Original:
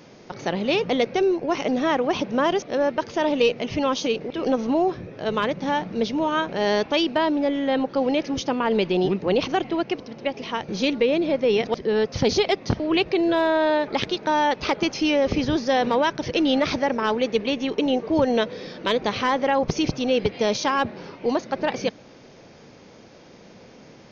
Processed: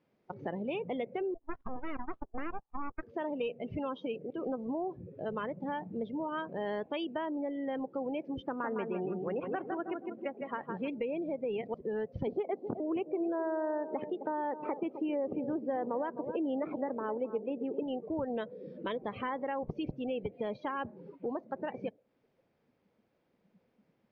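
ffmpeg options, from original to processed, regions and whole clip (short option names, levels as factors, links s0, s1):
-filter_complex "[0:a]asettb=1/sr,asplit=3[s0][s1][s2];[s0]atrim=end=1.344[s3];[s1]atrim=start=1.34:end=3.03,asetpts=PTS-STARTPTS,afade=t=in:d=0.004:c=qsin,afade=t=out:st=1.686:d=0.004:c=qsin,agate=range=0.0891:threshold=0.0562:ratio=16:release=100:detection=peak,equalizer=f=6000:w=0.52:g=-8,aeval=exprs='abs(val(0))':c=same[s4];[s2]atrim=start=3.026[s5];[s3][s4]acrossfade=d=0.004:c1=hsin:c2=qsin[s6];[s6][s5]acrossfade=d=0.004:c1=qsin:c2=hsin,asettb=1/sr,asplit=3[s7][s8][s9];[s7]atrim=end=8.424[s10];[s8]atrim=start=8.42:end=10.88,asetpts=PTS-STARTPTS,afade=t=in:d=0.004:c=qsin,afade=t=out:st=2.456:d=0.004:c=qsin,highpass=130,lowpass=2500,equalizer=f=1500:t=o:w=0.83:g=6,aecho=1:1:158|316|474|632|790:0.531|0.212|0.0849|0.034|0.0136,atrim=end_sample=108486[s11];[s9]atrim=start=10.876[s12];[s10][s11]acrossfade=d=0.004:c1=hsin:c2=qsin[s13];[s13][s12]acrossfade=d=0.004:c1=qsin:c2=hsin,asettb=1/sr,asplit=3[s14][s15][s16];[s14]atrim=end=12.274[s17];[s15]atrim=start=12.27:end=17.83,asetpts=PTS-STARTPTS,afade=t=in:d=0.004:c=qsin,afade=t=out:st=5.556:d=0.004:c=qsin,highpass=270,lowpass=3900,tiltshelf=f=1200:g=7.5,aecho=1:1:260:0.237,atrim=end_sample=245196[s18];[s16]atrim=start=17.826[s19];[s17][s18]acrossfade=d=0.004:c1=hsin:c2=qsin[s20];[s20][s19]acrossfade=d=0.004:c1=qsin:c2=hsin,lowpass=2900,afftdn=nr=25:nf=-29,acompressor=threshold=0.0158:ratio=2.5,volume=0.75"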